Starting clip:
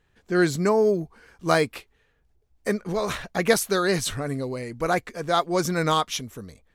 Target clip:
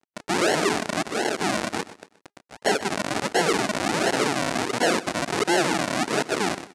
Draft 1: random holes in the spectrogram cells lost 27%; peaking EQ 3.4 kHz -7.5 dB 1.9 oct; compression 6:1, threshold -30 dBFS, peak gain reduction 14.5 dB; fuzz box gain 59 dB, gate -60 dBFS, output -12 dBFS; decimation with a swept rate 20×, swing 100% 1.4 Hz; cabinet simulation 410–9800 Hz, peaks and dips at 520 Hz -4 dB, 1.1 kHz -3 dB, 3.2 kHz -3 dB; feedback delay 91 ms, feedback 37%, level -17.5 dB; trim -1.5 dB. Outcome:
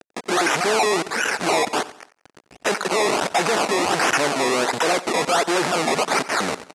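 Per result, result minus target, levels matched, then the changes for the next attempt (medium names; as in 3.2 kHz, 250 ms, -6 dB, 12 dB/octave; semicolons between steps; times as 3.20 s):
decimation with a swept rate: distortion -11 dB; echo 35 ms early; compression: peak gain reduction +5.5 dB
change: decimation with a swept rate 72×, swing 100% 1.4 Hz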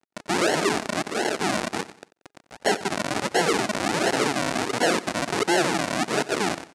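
echo 35 ms early; compression: peak gain reduction +5.5 dB
change: feedback delay 126 ms, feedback 37%, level -17.5 dB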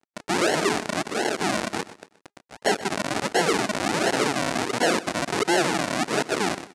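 compression: peak gain reduction +5.5 dB
change: compression 6:1, threshold -23.5 dBFS, peak gain reduction 9.5 dB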